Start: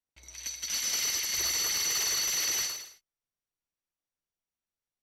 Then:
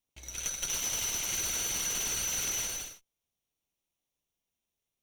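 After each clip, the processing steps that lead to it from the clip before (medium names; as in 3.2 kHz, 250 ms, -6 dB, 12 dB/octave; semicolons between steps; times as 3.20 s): comb filter that takes the minimum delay 0.32 ms; compression 6:1, threshold -37 dBFS, peak gain reduction 9 dB; trim +6.5 dB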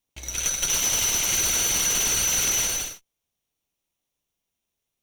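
waveshaping leveller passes 1; trim +6.5 dB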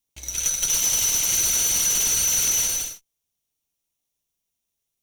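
tone controls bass +2 dB, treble +8 dB; trim -4.5 dB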